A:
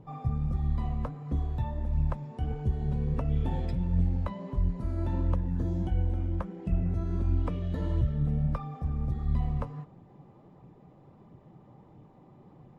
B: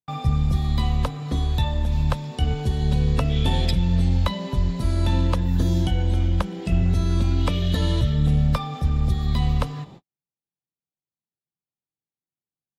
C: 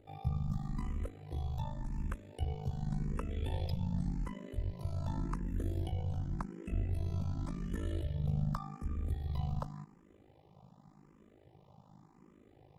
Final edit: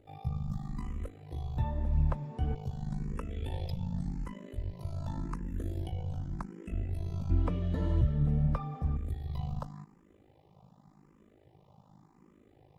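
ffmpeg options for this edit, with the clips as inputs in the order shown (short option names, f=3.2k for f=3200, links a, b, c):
-filter_complex "[0:a]asplit=2[a][b];[2:a]asplit=3[c][d][e];[c]atrim=end=1.572[f];[a]atrim=start=1.568:end=2.552[g];[d]atrim=start=2.548:end=7.302[h];[b]atrim=start=7.298:end=8.972[i];[e]atrim=start=8.968[j];[f][g]acrossfade=d=0.004:c1=hsin:c2=hsin[k];[k][h]acrossfade=d=0.004:c1=hsin:c2=hsin[l];[l][i]acrossfade=d=0.004:c1=hsin:c2=hsin[m];[m][j]acrossfade=d=0.004:c1=hsin:c2=hsin"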